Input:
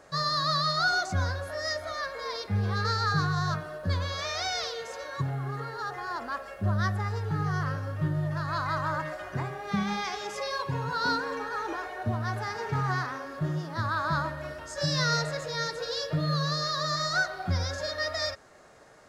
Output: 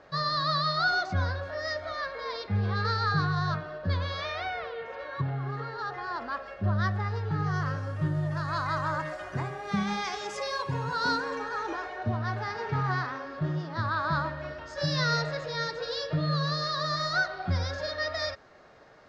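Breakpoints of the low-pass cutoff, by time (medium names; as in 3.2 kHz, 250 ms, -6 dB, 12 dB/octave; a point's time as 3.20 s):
low-pass 24 dB/octave
4.17 s 4.6 kHz
4.61 s 2.3 kHz
5.49 s 4.9 kHz
7.26 s 4.9 kHz
7.98 s 9.6 kHz
11.02 s 9.6 kHz
12.24 s 5 kHz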